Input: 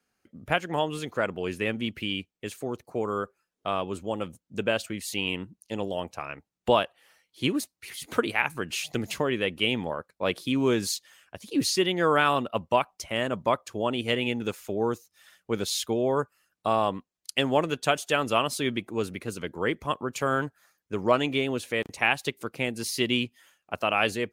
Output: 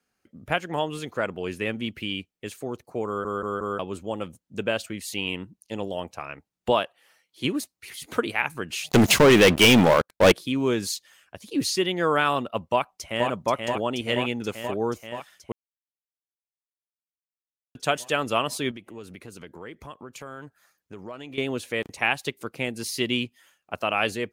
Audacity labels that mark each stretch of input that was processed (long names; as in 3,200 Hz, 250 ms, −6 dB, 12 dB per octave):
3.070000	3.070000	stutter in place 0.18 s, 4 plays
6.720000	7.450000	high-pass filter 140 Hz 6 dB per octave
8.890000	10.320000	leveller curve on the samples passes 5
12.690000	13.280000	delay throw 480 ms, feedback 75%, level −4 dB
15.520000	17.750000	silence
18.710000	21.380000	downward compressor 3 to 1, threshold −40 dBFS